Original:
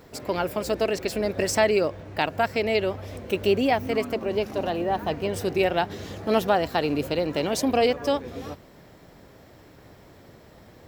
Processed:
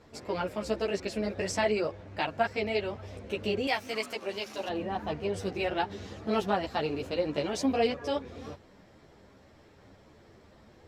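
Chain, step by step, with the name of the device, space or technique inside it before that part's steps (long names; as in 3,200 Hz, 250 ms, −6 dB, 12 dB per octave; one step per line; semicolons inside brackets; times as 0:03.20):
string-machine ensemble chorus (string-ensemble chorus; low-pass filter 7,700 Hz 12 dB per octave)
0:03.67–0:04.69: spectral tilt +4 dB per octave
level −3 dB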